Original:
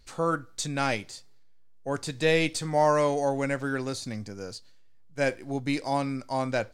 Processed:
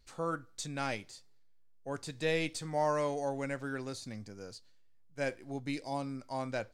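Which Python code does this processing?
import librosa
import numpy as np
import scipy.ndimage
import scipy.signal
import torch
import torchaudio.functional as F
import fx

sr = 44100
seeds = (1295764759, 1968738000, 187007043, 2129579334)

y = fx.peak_eq(x, sr, hz=fx.line((5.7, 830.0), (6.2, 3000.0)), db=-9.0, octaves=0.77, at=(5.7, 6.2), fade=0.02)
y = y * 10.0 ** (-8.5 / 20.0)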